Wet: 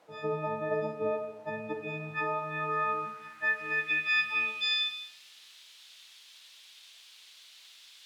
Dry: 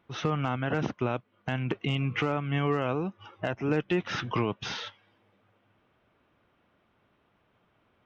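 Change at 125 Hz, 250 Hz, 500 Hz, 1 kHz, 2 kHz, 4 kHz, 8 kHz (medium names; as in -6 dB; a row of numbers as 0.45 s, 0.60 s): -14.5 dB, -12.5 dB, -2.5 dB, 0.0 dB, +6.0 dB, +5.0 dB, no reading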